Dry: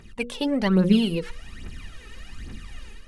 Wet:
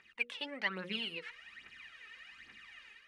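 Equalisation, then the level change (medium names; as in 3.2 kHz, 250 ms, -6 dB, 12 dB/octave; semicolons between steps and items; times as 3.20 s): band-pass filter 2.1 kHz, Q 1.9; -1.5 dB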